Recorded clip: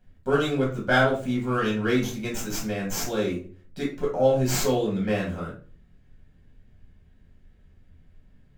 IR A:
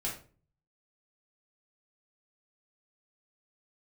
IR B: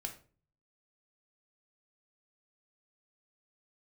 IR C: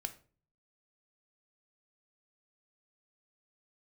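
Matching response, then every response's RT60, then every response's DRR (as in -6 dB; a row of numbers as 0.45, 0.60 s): A; 0.40, 0.40, 0.40 s; -5.0, 3.5, 8.0 dB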